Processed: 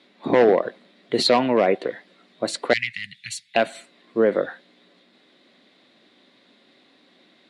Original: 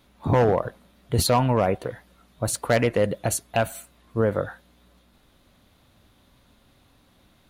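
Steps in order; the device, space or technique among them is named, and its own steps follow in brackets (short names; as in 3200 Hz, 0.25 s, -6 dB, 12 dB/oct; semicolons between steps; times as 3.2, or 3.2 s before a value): television speaker (speaker cabinet 220–6900 Hz, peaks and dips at 370 Hz +4 dB, 900 Hz -6 dB, 1300 Hz -5 dB, 2000 Hz +6 dB, 3900 Hz +5 dB, 6300 Hz -9 dB); 2.73–3.55 elliptic band-stop 120–2200 Hz, stop band 80 dB; gain +4 dB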